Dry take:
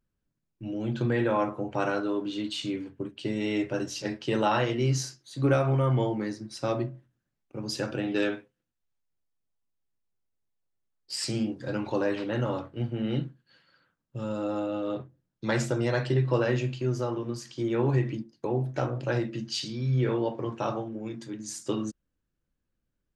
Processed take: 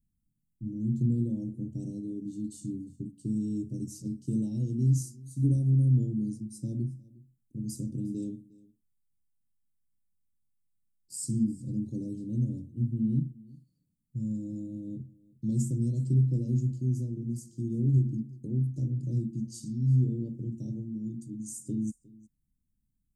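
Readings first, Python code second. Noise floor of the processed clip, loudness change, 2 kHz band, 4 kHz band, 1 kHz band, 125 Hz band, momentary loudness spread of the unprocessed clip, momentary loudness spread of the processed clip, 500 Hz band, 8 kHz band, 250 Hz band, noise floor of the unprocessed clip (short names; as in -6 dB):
-78 dBFS, -1.5 dB, under -40 dB, under -20 dB, under -40 dB, +2.5 dB, 11 LU, 13 LU, -17.0 dB, -3.0 dB, -1.0 dB, -82 dBFS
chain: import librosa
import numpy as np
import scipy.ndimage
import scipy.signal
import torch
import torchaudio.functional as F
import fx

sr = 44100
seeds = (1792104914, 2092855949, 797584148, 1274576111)

y = scipy.signal.sosfilt(scipy.signal.cheby1(3, 1.0, [230.0, 8300.0], 'bandstop', fs=sr, output='sos'), x)
y = y + 10.0 ** (-22.5 / 20.0) * np.pad(y, (int(358 * sr / 1000.0), 0))[:len(y)]
y = y * librosa.db_to_amplitude(3.5)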